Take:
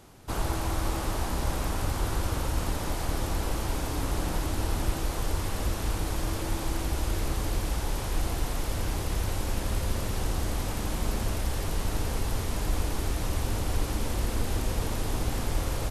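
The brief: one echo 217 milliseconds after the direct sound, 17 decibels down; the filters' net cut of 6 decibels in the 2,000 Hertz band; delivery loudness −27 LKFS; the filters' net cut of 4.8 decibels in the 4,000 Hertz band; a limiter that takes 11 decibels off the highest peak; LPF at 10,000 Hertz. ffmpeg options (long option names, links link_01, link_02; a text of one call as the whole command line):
ffmpeg -i in.wav -af "lowpass=10000,equalizer=frequency=2000:width_type=o:gain=-7,equalizer=frequency=4000:width_type=o:gain=-4,alimiter=level_in=1dB:limit=-24dB:level=0:latency=1,volume=-1dB,aecho=1:1:217:0.141,volume=9dB" out.wav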